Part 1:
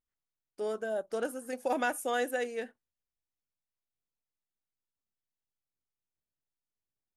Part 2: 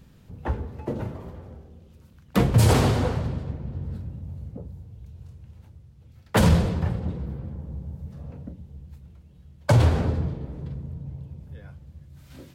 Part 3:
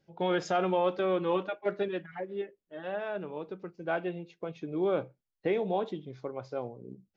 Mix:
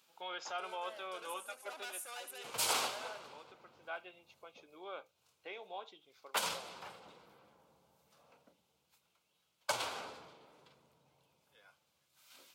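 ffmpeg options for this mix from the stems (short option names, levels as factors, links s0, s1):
-filter_complex "[0:a]asoftclip=type=tanh:threshold=0.015,volume=0.841,asplit=2[s0][s1];[s1]volume=0.266[s2];[1:a]volume=0.708,asplit=3[s3][s4][s5];[s3]atrim=end=1.81,asetpts=PTS-STARTPTS,afade=t=out:st=1.806:d=0.004:c=hsin[s6];[s4]atrim=start=1.81:end=2.44,asetpts=PTS-STARTPTS,volume=0[s7];[s5]atrim=start=2.44,asetpts=PTS-STARTPTS,afade=t=in:d=0.004:c=hsin[s8];[s6][s7][s8]concat=n=3:v=0:a=1[s9];[2:a]volume=0.631,asplit=2[s10][s11];[s11]apad=whole_len=553447[s12];[s9][s12]sidechaincompress=threshold=0.0126:ratio=6:attack=16:release=344[s13];[s2]aecho=0:1:73|146|219|292|365:1|0.38|0.144|0.0549|0.0209[s14];[s0][s13][s10][s14]amix=inputs=4:normalize=0,highpass=1200,equalizer=f=1800:t=o:w=0.28:g=-12.5"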